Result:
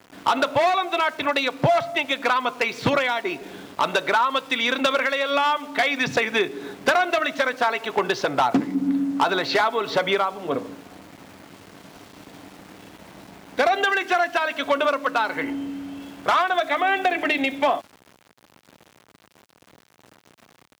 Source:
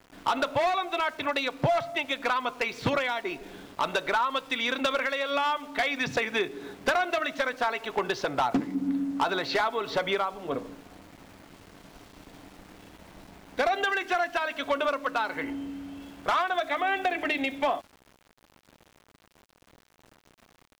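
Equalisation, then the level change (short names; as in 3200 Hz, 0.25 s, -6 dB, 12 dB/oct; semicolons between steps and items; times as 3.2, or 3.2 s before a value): HPF 100 Hz 12 dB/oct; +6.0 dB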